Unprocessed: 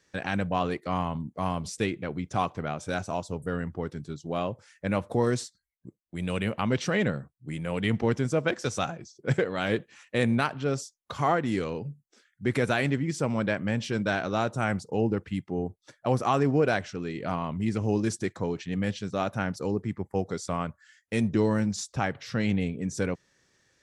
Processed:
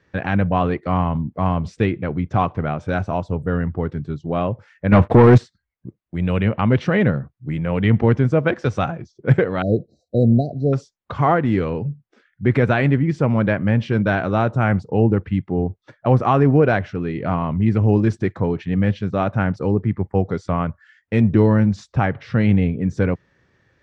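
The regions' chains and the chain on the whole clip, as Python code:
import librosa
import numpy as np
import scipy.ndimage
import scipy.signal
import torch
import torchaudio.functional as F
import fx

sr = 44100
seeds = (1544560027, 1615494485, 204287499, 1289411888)

y = fx.chain(x, sr, fx.notch(hz=550.0, q=7.2),
    fx.leveller(passes=3), at=(4.92, 5.38))
y = fx.chain(y, sr, fx.brickwall_bandstop(low_hz=750.0, high_hz=3800.0),
    fx.high_shelf(hz=4900.0, db=-8.0), at=(9.62, 10.73))
y = scipy.signal.sosfilt(scipy.signal.butter(2, 2300.0, 'lowpass', fs=sr, output='sos'), y)
y = fx.peak_eq(y, sr, hz=89.0, db=7.0, octaves=1.7)
y = y * librosa.db_to_amplitude(7.5)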